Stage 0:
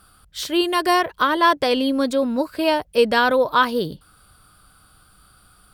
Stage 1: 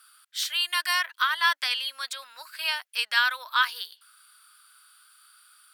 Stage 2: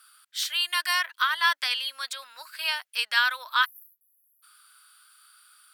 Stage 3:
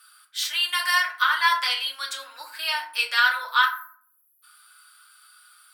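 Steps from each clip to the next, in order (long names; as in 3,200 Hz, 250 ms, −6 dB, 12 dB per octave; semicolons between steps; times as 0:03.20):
high-pass filter 1,400 Hz 24 dB per octave
time-frequency box erased 0:03.65–0:04.43, 260–11,000 Hz
feedback delay network reverb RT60 0.51 s, low-frequency decay 1.6×, high-frequency decay 0.5×, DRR −1.5 dB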